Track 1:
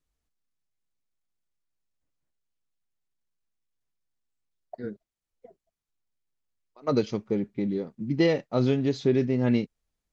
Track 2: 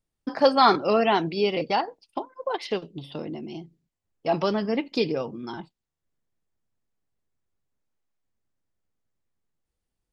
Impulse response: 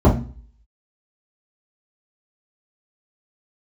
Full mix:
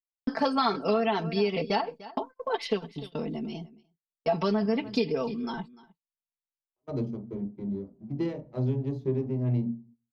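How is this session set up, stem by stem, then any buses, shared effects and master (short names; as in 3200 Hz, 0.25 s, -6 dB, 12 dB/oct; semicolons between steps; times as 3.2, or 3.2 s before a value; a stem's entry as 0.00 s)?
-17.0 dB, 0.00 s, send -20.5 dB, no echo send, power-law curve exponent 1.4
-2.0 dB, 0.00 s, no send, echo send -20 dB, gate -40 dBFS, range -28 dB; low shelf 150 Hz +6 dB; comb 4.5 ms, depth 84%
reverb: on, RT60 0.40 s, pre-delay 3 ms
echo: echo 0.297 s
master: gate -53 dBFS, range -13 dB; compressor 6:1, threshold -22 dBFS, peak gain reduction 11 dB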